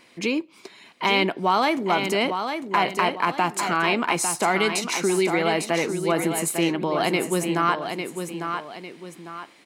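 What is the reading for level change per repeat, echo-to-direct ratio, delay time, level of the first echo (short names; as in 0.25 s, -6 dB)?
-8.0 dB, -6.5 dB, 0.851 s, -7.0 dB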